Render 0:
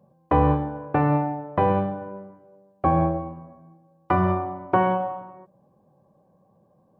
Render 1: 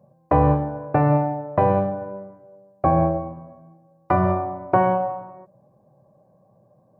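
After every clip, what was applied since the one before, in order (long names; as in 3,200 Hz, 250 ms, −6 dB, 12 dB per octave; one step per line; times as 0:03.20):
thirty-one-band graphic EQ 125 Hz +10 dB, 630 Hz +9 dB, 3,150 Hz −9 dB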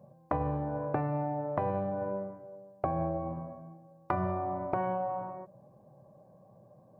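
brickwall limiter −11 dBFS, peak gain reduction 6.5 dB
downward compressor 12 to 1, threshold −28 dBFS, peak gain reduction 13 dB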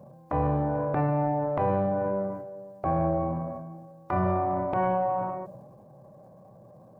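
transient designer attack −9 dB, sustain +6 dB
level +6.5 dB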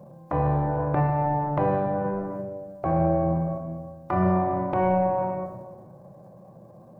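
convolution reverb RT60 1.5 s, pre-delay 6 ms, DRR 6 dB
level +2 dB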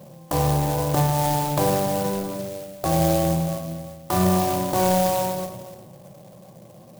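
converter with an unsteady clock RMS 0.085 ms
level +2.5 dB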